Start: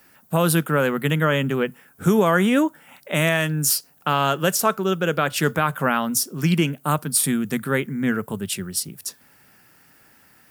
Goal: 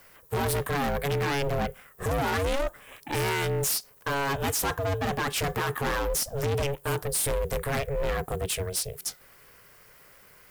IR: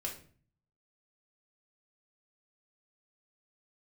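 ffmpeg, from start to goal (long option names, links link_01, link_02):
-af "volume=25dB,asoftclip=hard,volume=-25dB,aeval=exprs='val(0)*sin(2*PI*280*n/s)':channel_layout=same,volume=3dB"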